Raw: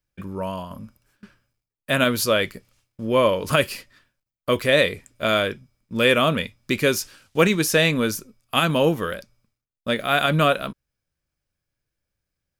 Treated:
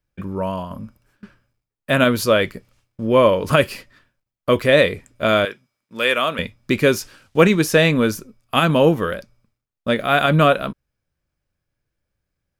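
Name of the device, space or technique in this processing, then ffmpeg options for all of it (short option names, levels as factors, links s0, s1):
behind a face mask: -filter_complex "[0:a]highshelf=f=2700:g=-8,asettb=1/sr,asplit=3[s0][s1][s2];[s0]atrim=end=5.454[s3];[s1]atrim=start=5.45:end=6.39,asetpts=PTS-STARTPTS,afade=t=in:d=0.004:c=qsin,afade=t=out:st=0.936:d=0.004:c=qsin,highpass=f=1100:p=1[s4];[s2]atrim=start=6.386[s5];[s3][s4]acrossfade=d=0.004:c1=hsin:c2=qsin[s6];[s6][s5]acrossfade=d=0.004:c1=qsin:c2=hsin,volume=1.78"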